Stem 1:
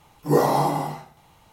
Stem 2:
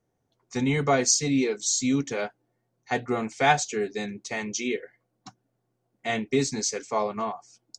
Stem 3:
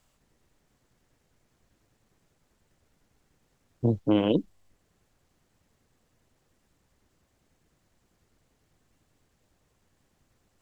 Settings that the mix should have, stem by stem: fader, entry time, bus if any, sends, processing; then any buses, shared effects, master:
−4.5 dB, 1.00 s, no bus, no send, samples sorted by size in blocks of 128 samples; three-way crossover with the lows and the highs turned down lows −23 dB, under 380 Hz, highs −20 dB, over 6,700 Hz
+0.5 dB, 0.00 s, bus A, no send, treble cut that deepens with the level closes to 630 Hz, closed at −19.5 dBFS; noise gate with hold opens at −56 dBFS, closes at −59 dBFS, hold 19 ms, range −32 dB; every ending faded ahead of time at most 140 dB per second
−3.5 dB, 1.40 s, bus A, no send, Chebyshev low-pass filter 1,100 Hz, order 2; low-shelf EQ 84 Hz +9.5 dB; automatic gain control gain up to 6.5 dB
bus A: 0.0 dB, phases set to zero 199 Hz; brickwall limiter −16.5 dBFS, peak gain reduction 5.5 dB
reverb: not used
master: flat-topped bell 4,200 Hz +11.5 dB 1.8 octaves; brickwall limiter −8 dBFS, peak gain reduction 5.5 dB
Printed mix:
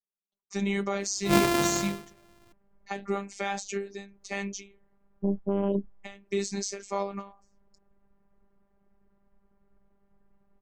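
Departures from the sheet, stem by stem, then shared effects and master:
stem 1: missing three-way crossover with the lows and the highs turned down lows −23 dB, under 380 Hz, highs −20 dB, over 6,700 Hz
stem 2: missing treble cut that deepens with the level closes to 630 Hz, closed at −19.5 dBFS
master: missing flat-topped bell 4,200 Hz +11.5 dB 1.8 octaves

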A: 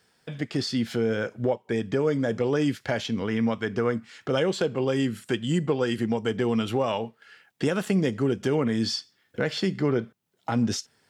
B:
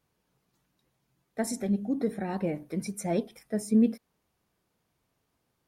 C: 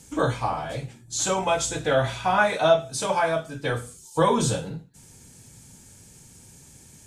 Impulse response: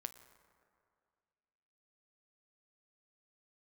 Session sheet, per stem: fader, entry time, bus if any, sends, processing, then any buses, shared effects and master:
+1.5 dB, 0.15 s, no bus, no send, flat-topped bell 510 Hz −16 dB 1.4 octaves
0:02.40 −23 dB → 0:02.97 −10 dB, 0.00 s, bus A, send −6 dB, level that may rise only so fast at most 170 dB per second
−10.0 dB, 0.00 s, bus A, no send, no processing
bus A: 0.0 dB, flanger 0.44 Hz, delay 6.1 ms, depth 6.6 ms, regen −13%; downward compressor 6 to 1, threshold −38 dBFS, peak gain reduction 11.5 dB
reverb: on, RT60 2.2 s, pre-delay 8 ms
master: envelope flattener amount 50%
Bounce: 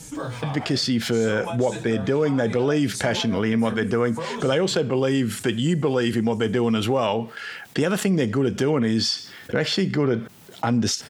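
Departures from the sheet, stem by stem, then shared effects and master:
stem A: missing flat-topped bell 510 Hz −16 dB 1.4 octaves
stem B: missing level that may rise only so fast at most 170 dB per second

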